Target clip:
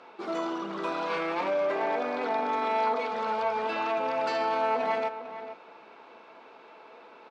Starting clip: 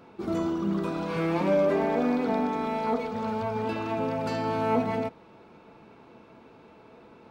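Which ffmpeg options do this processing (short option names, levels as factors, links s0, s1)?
-filter_complex "[0:a]alimiter=limit=0.075:level=0:latency=1:release=14,highpass=590,lowpass=5200,asplit=2[s0][s1];[s1]adelay=449,volume=0.282,highshelf=f=4000:g=-10.1[s2];[s0][s2]amix=inputs=2:normalize=0,volume=1.88"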